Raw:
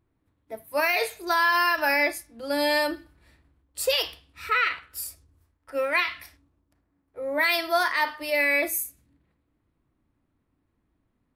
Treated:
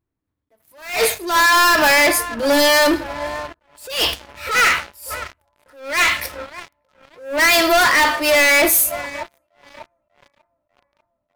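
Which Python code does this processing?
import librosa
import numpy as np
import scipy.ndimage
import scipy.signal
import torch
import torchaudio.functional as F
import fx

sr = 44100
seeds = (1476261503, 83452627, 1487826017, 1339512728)

y = fx.echo_banded(x, sr, ms=593, feedback_pct=76, hz=790.0, wet_db=-22.0)
y = fx.leveller(y, sr, passes=5)
y = fx.attack_slew(y, sr, db_per_s=120.0)
y = F.gain(torch.from_numpy(y), 1.5).numpy()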